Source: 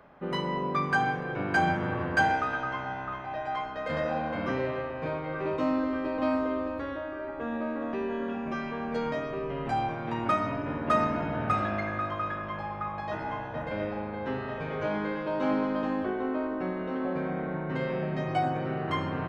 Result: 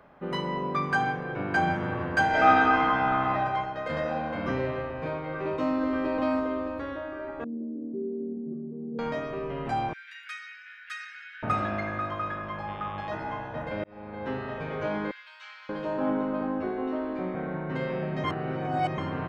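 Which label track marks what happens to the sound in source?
1.120000	1.710000	high shelf 5500 Hz -6 dB
2.290000	3.350000	reverb throw, RT60 1.5 s, DRR -9 dB
4.450000	5.020000	low shelf 110 Hz +8.5 dB
5.810000	6.400000	fast leveller amount 50%
7.440000	8.990000	Chebyshev band-pass 150–410 Hz, order 3
9.930000	11.430000	Chebyshev high-pass 1500 Hz, order 6
12.670000	13.080000	buzz 100 Hz, harmonics 36, -45 dBFS -3 dB/oct
13.840000	14.270000	fade in
15.110000	17.350000	bands offset in time highs, lows 0.58 s, split 1700 Hz
18.240000	18.980000	reverse

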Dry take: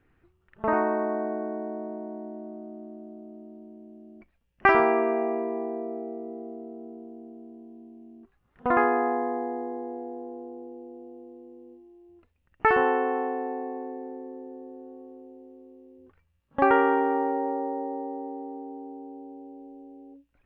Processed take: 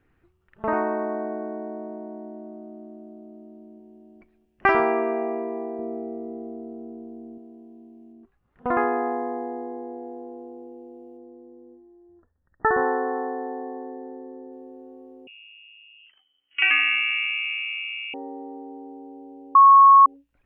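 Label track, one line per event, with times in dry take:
3.570000	4.010000	echo throw 0.22 s, feedback 50%, level -9.5 dB
5.790000	7.380000	low shelf 180 Hz +12 dB
8.120000	10.030000	high shelf 2400 Hz -6.5 dB
11.170000	14.520000	brick-wall FIR low-pass 1900 Hz
15.270000	18.140000	inverted band carrier 3100 Hz
19.550000	20.060000	bleep 1100 Hz -8 dBFS

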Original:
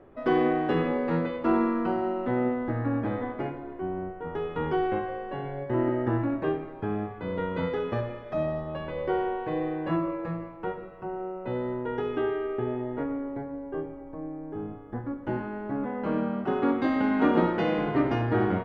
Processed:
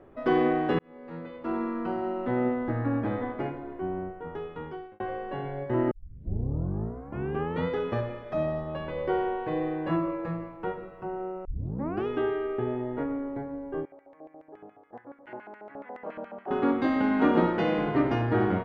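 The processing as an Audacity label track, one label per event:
0.790000	2.460000	fade in
3.950000	5.000000	fade out
5.910000	5.910000	tape start 1.76 s
11.450000	11.450000	tape start 0.62 s
13.850000	16.510000	LFO band-pass square 7.1 Hz 670–2100 Hz

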